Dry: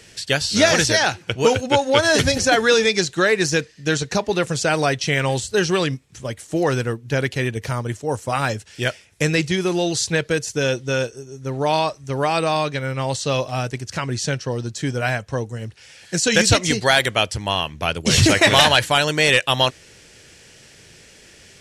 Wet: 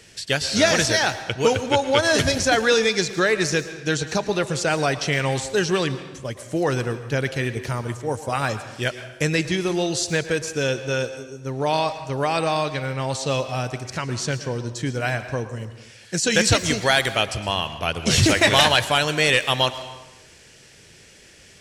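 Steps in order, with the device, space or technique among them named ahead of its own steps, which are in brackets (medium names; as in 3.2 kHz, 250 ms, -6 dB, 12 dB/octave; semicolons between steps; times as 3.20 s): saturated reverb return (on a send at -9 dB: reverberation RT60 0.95 s, pre-delay 103 ms + saturation -17 dBFS, distortion -11 dB); on the sum: trim -2.5 dB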